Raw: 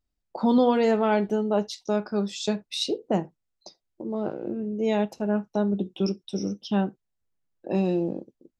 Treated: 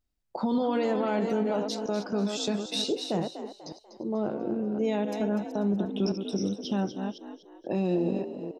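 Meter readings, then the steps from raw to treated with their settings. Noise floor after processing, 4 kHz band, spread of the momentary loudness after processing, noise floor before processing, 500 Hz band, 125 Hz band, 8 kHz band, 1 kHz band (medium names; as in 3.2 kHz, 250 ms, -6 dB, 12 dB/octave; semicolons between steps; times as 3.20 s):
-57 dBFS, -0.5 dB, 12 LU, -80 dBFS, -3.5 dB, -2.0 dB, 0.0 dB, -4.5 dB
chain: chunks repeated in reverse 266 ms, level -10.5 dB; peak limiter -19 dBFS, peak gain reduction 10.5 dB; frequency-shifting echo 245 ms, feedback 38%, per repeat +55 Hz, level -11 dB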